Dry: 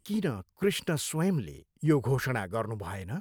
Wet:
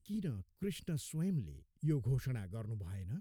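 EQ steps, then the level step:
guitar amp tone stack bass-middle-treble 10-0-1
+7.5 dB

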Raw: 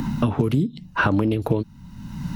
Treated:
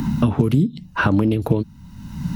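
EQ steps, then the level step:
parametric band 76 Hz +7 dB 0.33 octaves
high-shelf EQ 5,500 Hz +4 dB
dynamic equaliser 180 Hz, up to +5 dB, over −32 dBFS, Q 0.96
0.0 dB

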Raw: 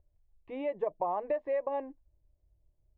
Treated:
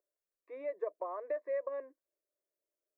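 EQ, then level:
elliptic high-pass filter 210 Hz
low-shelf EQ 410 Hz −11.5 dB
phaser with its sweep stopped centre 820 Hz, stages 6
+1.0 dB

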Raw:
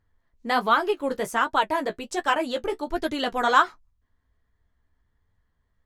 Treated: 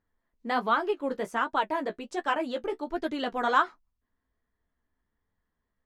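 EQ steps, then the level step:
low-pass filter 3,200 Hz 6 dB per octave
low shelf with overshoot 160 Hz −7 dB, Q 1.5
−4.5 dB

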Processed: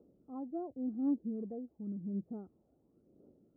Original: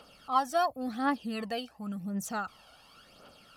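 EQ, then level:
high-pass filter 62 Hz
transistor ladder low-pass 400 Hz, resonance 60%
+4.5 dB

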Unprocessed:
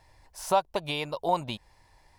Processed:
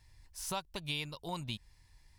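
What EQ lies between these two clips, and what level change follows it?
guitar amp tone stack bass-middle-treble 6-0-2
+12.5 dB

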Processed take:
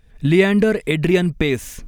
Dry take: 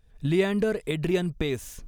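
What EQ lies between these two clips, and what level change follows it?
parametric band 230 Hz +4 dB 1.1 octaves
parametric band 2,100 Hz +6 dB 0.81 octaves
+7.0 dB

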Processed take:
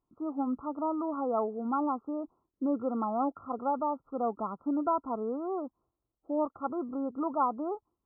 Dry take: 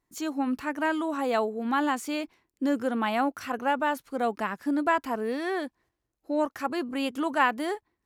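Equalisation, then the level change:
linear-phase brick-wall low-pass 1,400 Hz
−3.5 dB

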